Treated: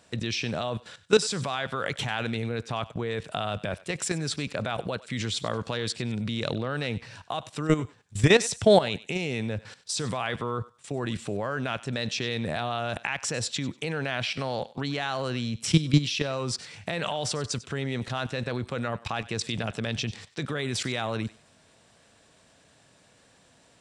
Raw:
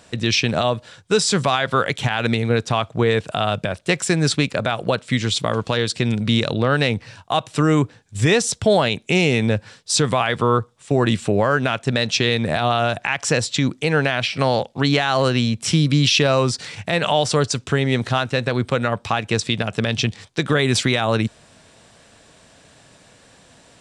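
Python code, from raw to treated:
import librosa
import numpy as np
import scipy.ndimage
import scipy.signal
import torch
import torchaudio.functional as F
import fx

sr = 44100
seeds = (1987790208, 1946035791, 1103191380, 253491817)

y = fx.highpass(x, sr, hz=41.0, slope=6)
y = fx.level_steps(y, sr, step_db=15)
y = fx.echo_thinned(y, sr, ms=96, feedback_pct=24, hz=870.0, wet_db=-16.5)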